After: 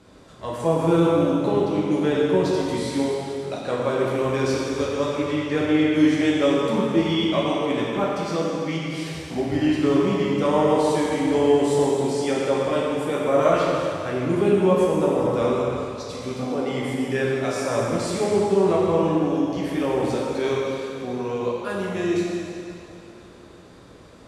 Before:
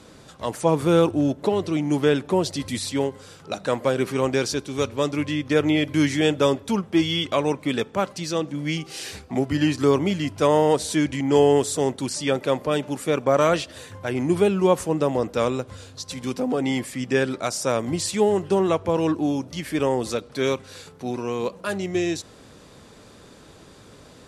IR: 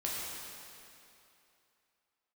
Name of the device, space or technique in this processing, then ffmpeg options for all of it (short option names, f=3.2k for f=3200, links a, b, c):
swimming-pool hall: -filter_complex "[1:a]atrim=start_sample=2205[a];[0:a][a]afir=irnorm=-1:irlink=0,highshelf=f=3.4k:g=-7.5,volume=-3dB"